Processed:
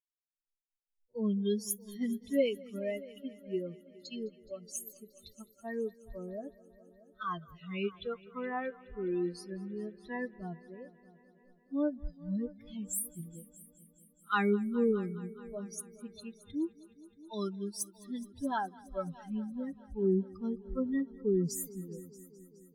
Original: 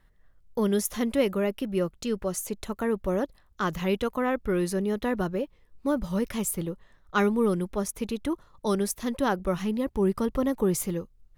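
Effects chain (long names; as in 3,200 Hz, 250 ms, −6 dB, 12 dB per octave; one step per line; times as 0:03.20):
spectral dynamics exaggerated over time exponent 3
time stretch by phase vocoder 2×
echo machine with several playback heads 210 ms, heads all three, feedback 48%, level −23 dB
level −1.5 dB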